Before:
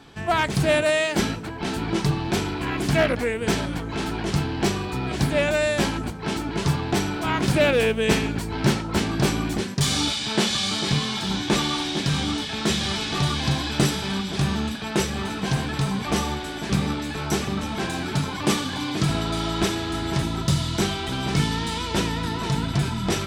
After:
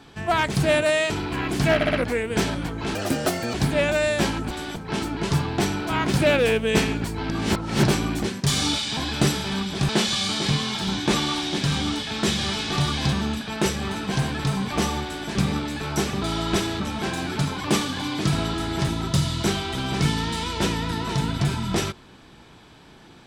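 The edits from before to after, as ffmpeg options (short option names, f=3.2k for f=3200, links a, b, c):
-filter_complex "[0:a]asplit=17[a][b][c][d][e][f][g][h][i][j][k][l][m][n][o][p][q];[a]atrim=end=1.102[r];[b]atrim=start=2.388:end=3.102[s];[c]atrim=start=3.038:end=3.102[t];[d]atrim=start=3.038:end=3.102[u];[e]atrim=start=3.038:end=4.064[v];[f]atrim=start=4.06:end=5.13,asetpts=PTS-STARTPTS,asetrate=80262,aresample=44100[w];[g]atrim=start=5.126:end=6.102[x];[h]atrim=start=16.378:end=16.632[y];[i]atrim=start=6.098:end=8.642[z];[j]atrim=start=8.638:end=9.202,asetpts=PTS-STARTPTS,areverse[aa];[k]atrim=start=9.198:end=10.312[ab];[l]atrim=start=13.548:end=14.472[ac];[m]atrim=start=10.308:end=13.552[ad];[n]atrim=start=14.468:end=17.562[ae];[o]atrim=start=19.298:end=19.882[af];[p]atrim=start=17.558:end=19.302[ag];[q]atrim=start=19.878[ah];[r][s]acrossfade=d=0.004:c1=hsin:c2=hsin[ai];[ai][t]acrossfade=d=0.004:c1=hsin:c2=hsin[aj];[aj][u]acrossfade=d=0.004:c1=hsin:c2=hsin[ak];[ak][v]acrossfade=d=0.004:c1=hsin:c2=hsin[al];[al][w]acrossfade=d=0.004:c1=hsin:c2=hsin[am];[am][x]acrossfade=d=0.004:c1=hsin:c2=hsin[an];[an][y]acrossfade=d=0.004:c1=hsin:c2=hsin[ao];[ao][z]acrossfade=d=0.004:c1=hsin:c2=hsin[ap];[ap][aa]acrossfade=d=0.004:c1=hsin:c2=hsin[aq];[aq][ab]acrossfade=d=0.004:c1=hsin:c2=hsin[ar];[ar][ac]acrossfade=d=0.004:c1=hsin:c2=hsin[as];[as][ad]acrossfade=d=0.004:c1=hsin:c2=hsin[at];[at][ae]acrossfade=d=0.004:c1=hsin:c2=hsin[au];[au][af]acrossfade=d=0.004:c1=hsin:c2=hsin[av];[av][ag]acrossfade=d=0.004:c1=hsin:c2=hsin[aw];[aw][ah]acrossfade=d=0.004:c1=hsin:c2=hsin"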